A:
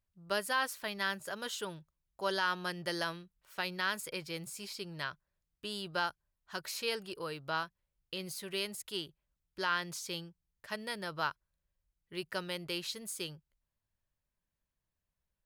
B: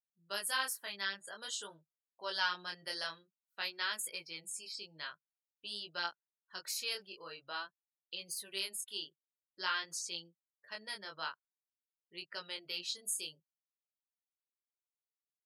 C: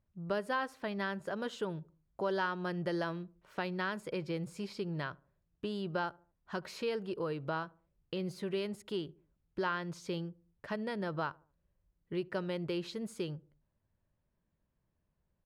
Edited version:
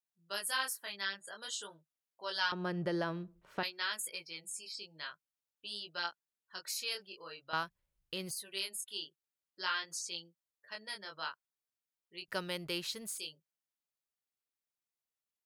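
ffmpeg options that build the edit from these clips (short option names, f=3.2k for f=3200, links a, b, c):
-filter_complex "[0:a]asplit=2[a][b];[1:a]asplit=4[c][d][e][f];[c]atrim=end=2.522[g];[2:a]atrim=start=2.518:end=3.632[h];[d]atrim=start=3.628:end=7.532[i];[a]atrim=start=7.528:end=8.312[j];[e]atrim=start=8.308:end=12.282[k];[b]atrim=start=12.278:end=13.182[l];[f]atrim=start=13.178[m];[g][h]acrossfade=d=0.004:c1=hsin:c2=hsin[n];[n][i]acrossfade=d=0.004:c1=hsin:c2=hsin[o];[o][j]acrossfade=d=0.004:c1=hsin:c2=hsin[p];[p][k]acrossfade=d=0.004:c1=hsin:c2=hsin[q];[q][l]acrossfade=d=0.004:c1=hsin:c2=hsin[r];[r][m]acrossfade=d=0.004:c1=hsin:c2=hsin"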